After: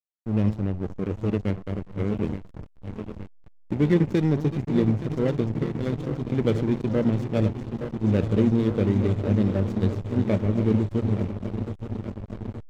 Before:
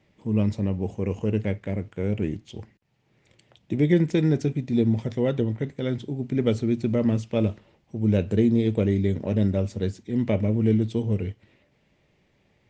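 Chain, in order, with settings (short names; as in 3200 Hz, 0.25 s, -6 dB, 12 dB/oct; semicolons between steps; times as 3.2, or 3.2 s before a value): regenerating reverse delay 0.436 s, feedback 84%, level -9 dB; backlash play -24 dBFS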